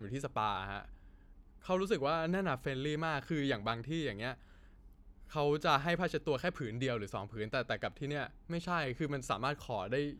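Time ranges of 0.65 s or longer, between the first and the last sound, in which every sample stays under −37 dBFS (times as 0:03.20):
0:00.80–0:01.69
0:04.33–0:05.35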